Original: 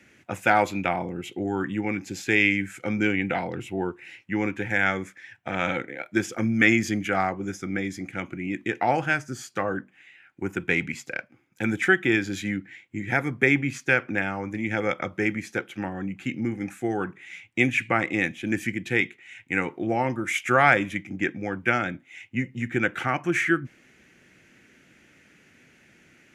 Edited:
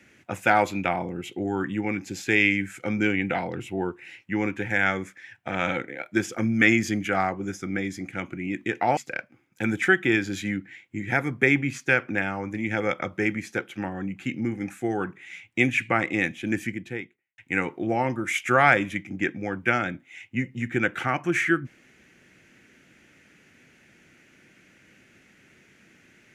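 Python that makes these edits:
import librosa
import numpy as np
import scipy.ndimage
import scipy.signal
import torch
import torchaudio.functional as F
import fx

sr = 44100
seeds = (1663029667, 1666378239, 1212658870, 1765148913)

y = fx.studio_fade_out(x, sr, start_s=18.46, length_s=0.92)
y = fx.edit(y, sr, fx.cut(start_s=8.97, length_s=2.0), tone=tone)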